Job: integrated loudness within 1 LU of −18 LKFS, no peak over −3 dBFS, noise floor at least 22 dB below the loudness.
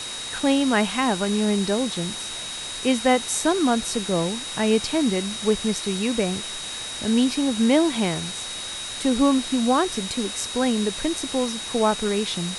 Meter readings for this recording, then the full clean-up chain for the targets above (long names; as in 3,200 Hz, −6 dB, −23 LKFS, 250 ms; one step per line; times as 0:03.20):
interfering tone 3,800 Hz; level of the tone −33 dBFS; background noise floor −33 dBFS; target noise floor −45 dBFS; integrated loudness −23.0 LKFS; sample peak −5.0 dBFS; target loudness −18.0 LKFS
→ notch filter 3,800 Hz, Q 30
noise reduction from a noise print 12 dB
level +5 dB
brickwall limiter −3 dBFS